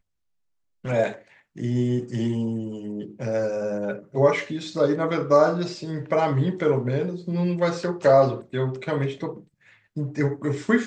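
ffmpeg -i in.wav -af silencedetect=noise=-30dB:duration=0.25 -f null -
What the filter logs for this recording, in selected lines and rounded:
silence_start: 0.00
silence_end: 0.85 | silence_duration: 0.85
silence_start: 1.12
silence_end: 1.58 | silence_duration: 0.46
silence_start: 9.37
silence_end: 9.97 | silence_duration: 0.59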